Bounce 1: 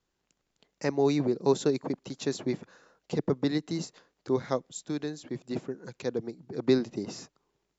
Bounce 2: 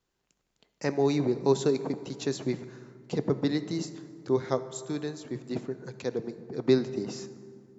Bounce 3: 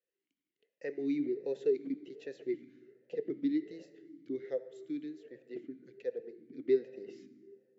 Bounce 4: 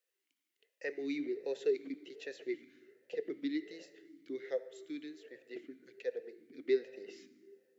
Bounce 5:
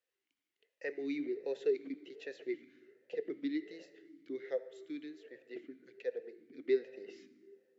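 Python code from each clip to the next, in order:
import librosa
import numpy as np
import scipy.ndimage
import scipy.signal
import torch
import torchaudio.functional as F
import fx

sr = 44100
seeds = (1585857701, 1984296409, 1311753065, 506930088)

y1 = fx.rev_fdn(x, sr, rt60_s=2.3, lf_ratio=1.25, hf_ratio=0.5, size_ms=45.0, drr_db=11.0)
y2 = fx.vowel_sweep(y1, sr, vowels='e-i', hz=1.3)
y2 = y2 * 10.0 ** (-1.0 / 20.0)
y3 = fx.highpass(y2, sr, hz=1200.0, slope=6)
y3 = y3 * 10.0 ** (7.5 / 20.0)
y4 = fx.high_shelf(y3, sr, hz=6000.0, db=-12.0)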